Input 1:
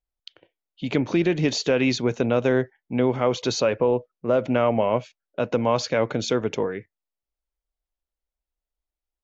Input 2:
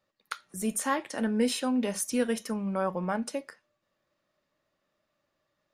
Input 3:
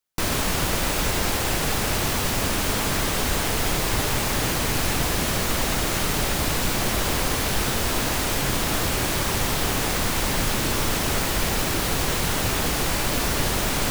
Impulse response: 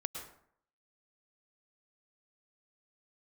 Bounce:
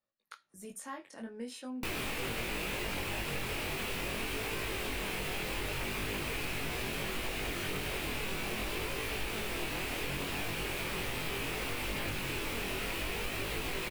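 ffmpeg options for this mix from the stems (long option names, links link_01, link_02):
-filter_complex "[1:a]volume=-10.5dB[link_01];[2:a]equalizer=frequency=400:width_type=o:width=0.67:gain=6,equalizer=frequency=2500:width_type=o:width=0.67:gain=10,equalizer=frequency=6300:width_type=o:width=0.67:gain=-5,flanger=delay=20:depth=6.2:speed=0.68,adelay=1650,volume=0.5dB[link_02];[link_01][link_02]amix=inputs=2:normalize=0,flanger=delay=18:depth=3.6:speed=0.44,acompressor=threshold=-38dB:ratio=2.5"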